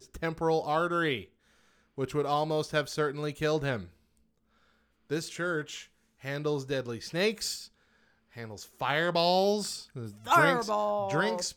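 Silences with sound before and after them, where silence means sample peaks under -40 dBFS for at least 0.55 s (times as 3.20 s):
1.24–1.98 s
3.84–5.10 s
7.65–8.37 s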